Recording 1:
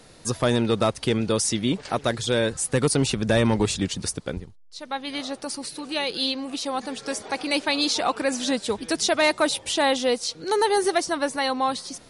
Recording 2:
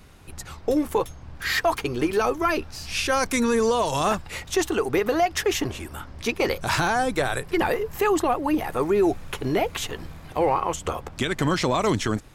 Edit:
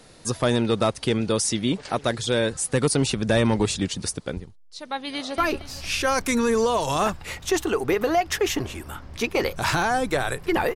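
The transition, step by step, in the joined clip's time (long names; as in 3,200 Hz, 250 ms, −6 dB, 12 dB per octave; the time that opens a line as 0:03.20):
recording 1
0:05.07–0:05.38: delay throw 230 ms, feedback 45%, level −8.5 dB
0:05.38: continue with recording 2 from 0:02.43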